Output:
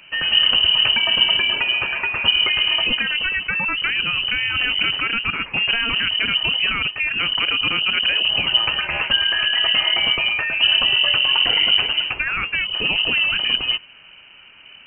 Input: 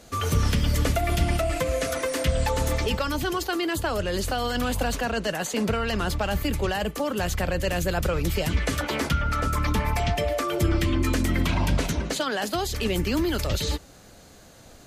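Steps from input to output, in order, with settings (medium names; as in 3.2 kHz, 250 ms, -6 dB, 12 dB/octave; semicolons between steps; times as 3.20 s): frequency inversion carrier 3 kHz; trim +4.5 dB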